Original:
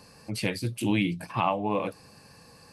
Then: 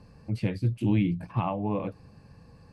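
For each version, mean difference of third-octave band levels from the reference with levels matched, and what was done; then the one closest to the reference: 7.0 dB: RIAA curve playback; gain -6 dB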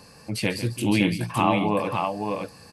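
5.5 dB: tapped delay 0.145/0.563 s -13/-4 dB; gain +3.5 dB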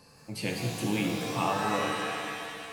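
12.0 dB: shimmer reverb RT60 2.2 s, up +7 st, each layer -2 dB, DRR 1 dB; gain -5 dB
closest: second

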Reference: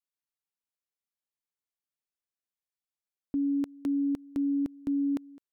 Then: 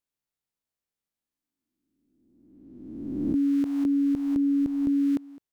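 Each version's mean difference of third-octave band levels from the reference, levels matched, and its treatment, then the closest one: 4.0 dB: spectral swells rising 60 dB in 1.56 s; low shelf 430 Hz +8.5 dB; gain -1.5 dB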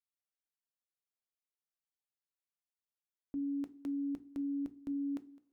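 1.0 dB: notches 60/120/180/240/300/360/420 Hz; two-slope reverb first 0.25 s, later 1.7 s, from -20 dB, DRR 13 dB; gain -8.5 dB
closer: second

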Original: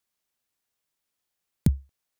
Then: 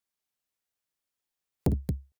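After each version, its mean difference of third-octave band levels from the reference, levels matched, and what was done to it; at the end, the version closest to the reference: 9.5 dB: spectral noise reduction 7 dB; tapped delay 55/227 ms -7/-7.5 dB; core saturation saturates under 380 Hz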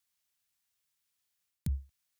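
3.5 dB: HPF 48 Hz; bell 420 Hz -12 dB 2.7 oct; reverse; compressor, threshold -32 dBFS, peak gain reduction 11 dB; reverse; gain +1.5 dB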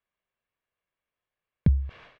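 5.5 dB: LPF 2800 Hz 24 dB/oct; comb 1.8 ms, depth 35%; sustainer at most 96 dB/s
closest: second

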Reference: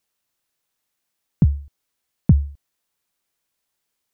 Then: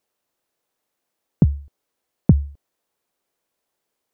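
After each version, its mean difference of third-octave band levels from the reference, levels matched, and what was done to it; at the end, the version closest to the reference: 1.0 dB: bell 480 Hz +11 dB 2.5 oct; gain -3 dB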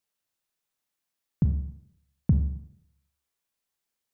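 5.5 dB: Schroeder reverb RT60 0.72 s, combs from 29 ms, DRR 6 dB; gain -8 dB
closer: first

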